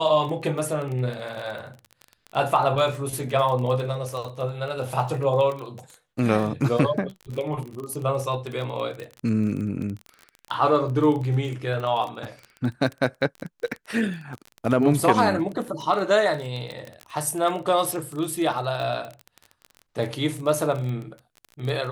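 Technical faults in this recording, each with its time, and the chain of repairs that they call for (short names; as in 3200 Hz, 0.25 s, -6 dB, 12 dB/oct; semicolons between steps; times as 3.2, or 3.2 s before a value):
crackle 23/s -29 dBFS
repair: de-click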